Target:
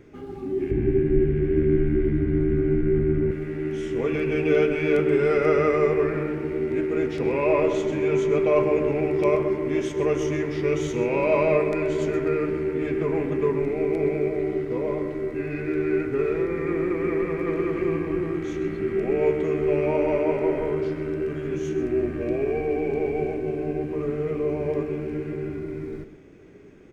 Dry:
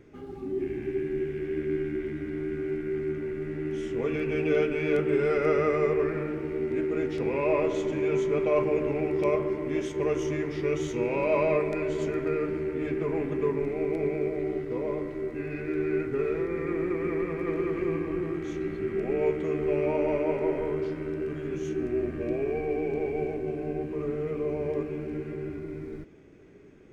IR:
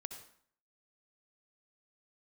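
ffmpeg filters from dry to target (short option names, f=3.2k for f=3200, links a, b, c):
-filter_complex "[0:a]asettb=1/sr,asplit=3[a][b][c];[a]atrim=end=0.714[d];[b]atrim=start=0.71:end=3.31,asetpts=PTS-STARTPTS,afade=t=in:d=0.004:c=qsin,afade=t=out:st=2.596:d=0.004:c=qsin,aemphasis=mode=reproduction:type=riaa[e];[c]atrim=start=3.306[f];[d][e]acrossfade=d=0.004:c1=hsin:c2=qsin[g];[g][f]acrossfade=d=0.004:c1=qsin:c2=hsin,aecho=1:1:129:0.224,volume=4dB"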